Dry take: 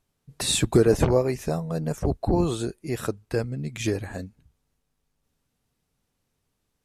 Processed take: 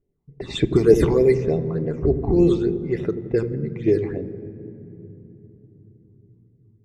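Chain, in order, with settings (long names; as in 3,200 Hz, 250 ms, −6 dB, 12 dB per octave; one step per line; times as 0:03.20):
hollow resonant body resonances 400/2,000/3,600 Hz, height 12 dB, ringing for 20 ms
low-pass that shuts in the quiet parts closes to 730 Hz, open at −9.5 dBFS
all-pass phaser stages 8, 3.4 Hz, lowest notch 450–1,400 Hz
delay with a low-pass on its return 86 ms, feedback 68%, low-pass 450 Hz, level −9 dB
on a send at −11.5 dB: convolution reverb RT60 3.6 s, pre-delay 3 ms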